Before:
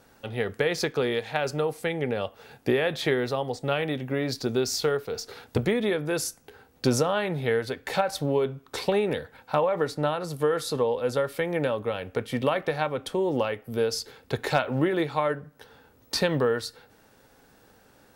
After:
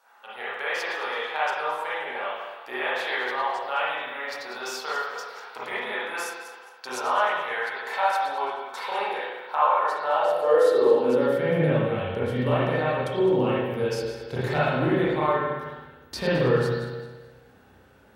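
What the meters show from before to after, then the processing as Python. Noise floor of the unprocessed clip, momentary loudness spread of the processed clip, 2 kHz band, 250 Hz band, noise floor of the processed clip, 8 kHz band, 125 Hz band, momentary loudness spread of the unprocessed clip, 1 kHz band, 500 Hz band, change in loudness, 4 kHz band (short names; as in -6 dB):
-59 dBFS, 13 LU, +4.0 dB, -0.5 dB, -54 dBFS, -7.5 dB, +1.0 dB, 6 LU, +6.5 dB, +1.0 dB, +2.0 dB, -2.0 dB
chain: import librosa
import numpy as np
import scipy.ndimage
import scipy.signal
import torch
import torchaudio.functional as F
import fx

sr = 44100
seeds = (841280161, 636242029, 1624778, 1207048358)

y = fx.reverse_delay_fb(x, sr, ms=108, feedback_pct=55, wet_db=-11.0)
y = fx.rev_spring(y, sr, rt60_s=1.1, pass_ms=(32, 51, 56), chirp_ms=65, drr_db=-9.0)
y = fx.filter_sweep_highpass(y, sr, from_hz=960.0, to_hz=62.0, start_s=10.02, end_s=12.43, q=2.6)
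y = F.gain(torch.from_numpy(y), -8.0).numpy()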